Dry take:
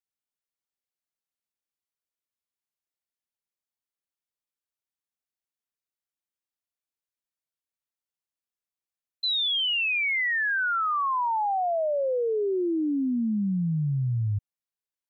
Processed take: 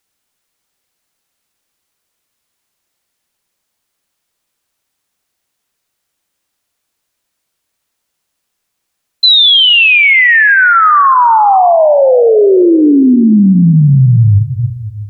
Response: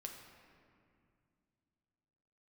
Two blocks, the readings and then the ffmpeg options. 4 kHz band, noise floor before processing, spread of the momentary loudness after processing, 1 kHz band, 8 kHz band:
+19.5 dB, under -85 dBFS, 6 LU, +19.0 dB, no reading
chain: -filter_complex "[0:a]asplit=2[s0][s1];[1:a]atrim=start_sample=2205,afade=t=out:st=0.43:d=0.01,atrim=end_sample=19404,asetrate=22932,aresample=44100[s2];[s1][s2]afir=irnorm=-1:irlink=0,volume=0.596[s3];[s0][s3]amix=inputs=2:normalize=0,alimiter=level_in=11.2:limit=0.891:release=50:level=0:latency=1,volume=0.891"

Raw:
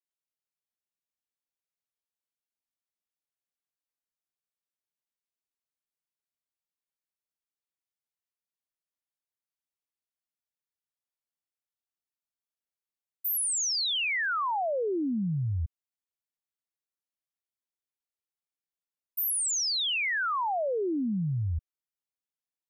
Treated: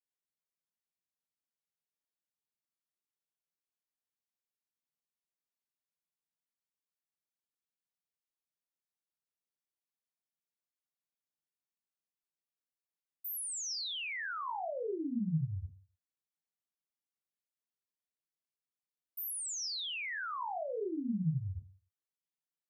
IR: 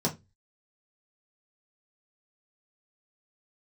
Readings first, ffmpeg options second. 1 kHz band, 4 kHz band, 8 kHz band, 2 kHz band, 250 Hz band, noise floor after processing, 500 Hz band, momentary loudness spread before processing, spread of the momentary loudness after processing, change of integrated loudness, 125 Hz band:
-9.5 dB, -10.0 dB, -10.5 dB, -10.5 dB, -5.5 dB, under -85 dBFS, -8.5 dB, 8 LU, 8 LU, -9.0 dB, -6.0 dB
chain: -filter_complex "[0:a]highpass=100,alimiter=level_in=1.78:limit=0.0631:level=0:latency=1,volume=0.562,asplit=2[s0][s1];[1:a]atrim=start_sample=2205,adelay=22[s2];[s1][s2]afir=irnorm=-1:irlink=0,volume=0.188[s3];[s0][s3]amix=inputs=2:normalize=0,volume=0.422"

